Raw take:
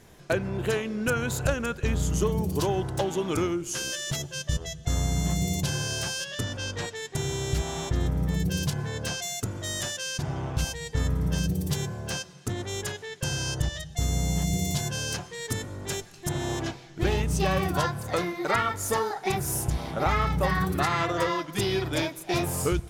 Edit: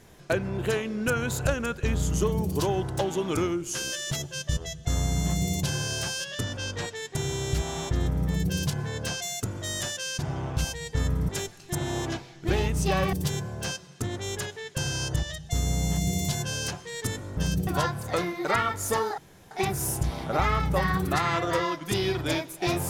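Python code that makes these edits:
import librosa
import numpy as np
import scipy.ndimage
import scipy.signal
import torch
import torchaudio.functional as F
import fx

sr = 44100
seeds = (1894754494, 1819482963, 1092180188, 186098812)

y = fx.edit(x, sr, fx.swap(start_s=11.29, length_s=0.3, other_s=15.83, other_length_s=1.84),
    fx.insert_room_tone(at_s=19.18, length_s=0.33), tone=tone)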